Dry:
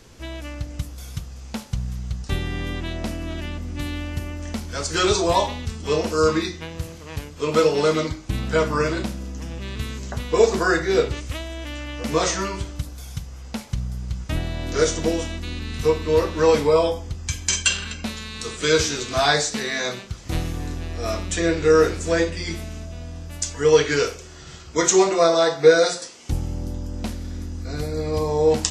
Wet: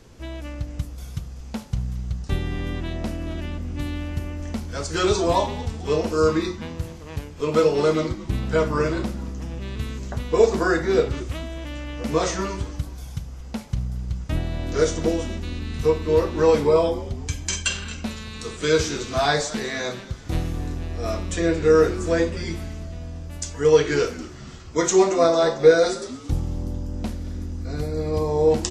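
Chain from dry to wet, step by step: tilt shelf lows +3 dB, about 1200 Hz; frequency-shifting echo 0.225 s, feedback 47%, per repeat -110 Hz, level -17 dB; gain -2.5 dB

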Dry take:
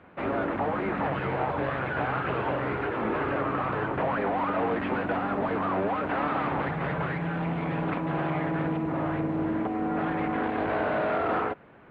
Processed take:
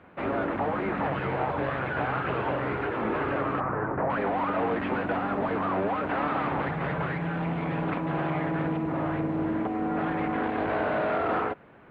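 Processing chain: 3.6–4.1 LPF 1800 Hz 24 dB/oct

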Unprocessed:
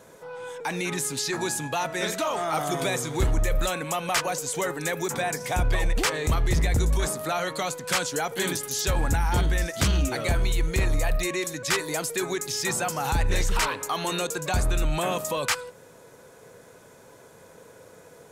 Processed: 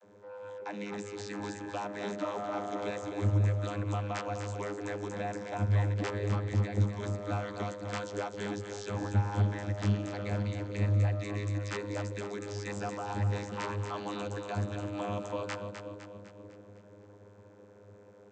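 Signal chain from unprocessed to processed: split-band echo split 490 Hz, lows 0.53 s, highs 0.253 s, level -8 dB; vocoder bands 32, saw 102 Hz; gain -4 dB

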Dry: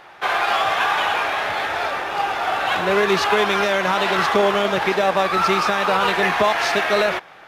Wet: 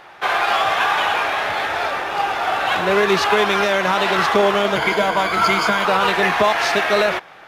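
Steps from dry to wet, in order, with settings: 4.75–5.85 ripple EQ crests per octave 1.8, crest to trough 13 dB; gain +1.5 dB

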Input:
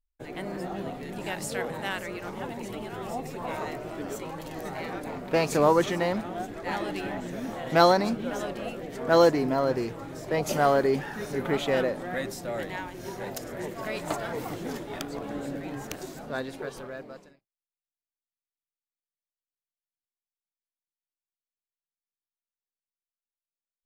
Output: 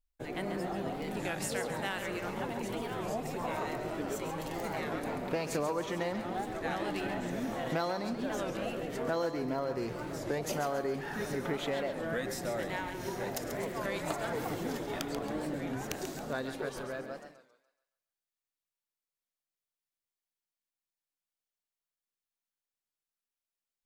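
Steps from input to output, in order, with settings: compressor 6:1, threshold -31 dBFS, peak gain reduction 16 dB; thinning echo 0.137 s, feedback 42%, level -8.5 dB; record warp 33 1/3 rpm, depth 160 cents

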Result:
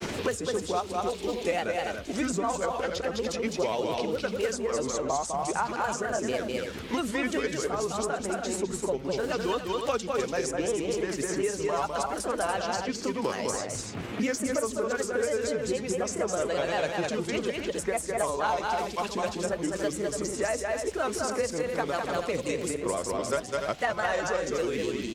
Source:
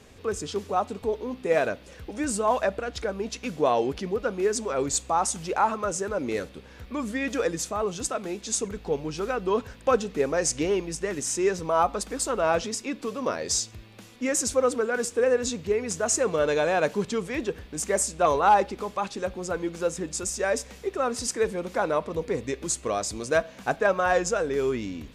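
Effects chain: grains, spray 16 ms, pitch spread up and down by 3 st; loudspeakers at several distances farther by 70 m -4 dB, 98 m -9 dB; three-band squash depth 100%; gain -4.5 dB

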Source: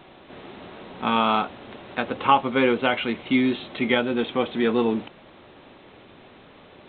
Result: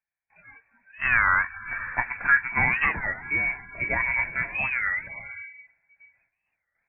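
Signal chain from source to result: gate with hold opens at -38 dBFS; comb 1.2 ms, depth 61%; diffused feedback echo 0.544 s, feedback 45%, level -13 dB; random-step tremolo; spectral noise reduction 24 dB; inverted band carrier 2500 Hz; record warp 33 1/3 rpm, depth 250 cents

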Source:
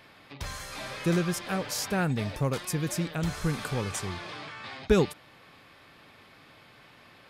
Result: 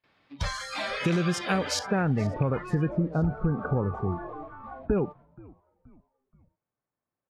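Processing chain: rattling part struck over -23 dBFS, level -20 dBFS; LPF 5500 Hz 12 dB/oct, from 1.79 s 1900 Hz, from 2.89 s 1100 Hz; gate with hold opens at -46 dBFS; spectral noise reduction 20 dB; limiter -20.5 dBFS, peak gain reduction 9.5 dB; compressor, threshold -29 dBFS, peak gain reduction 5.5 dB; frequency-shifting echo 0.477 s, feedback 47%, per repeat -88 Hz, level -23 dB; gain +8 dB

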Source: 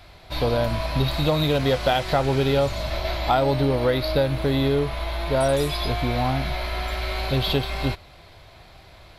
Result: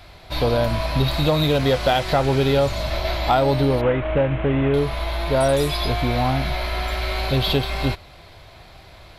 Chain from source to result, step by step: 3.81–4.74 CVSD 16 kbps; soft clip -9 dBFS, distortion -27 dB; gain +3 dB

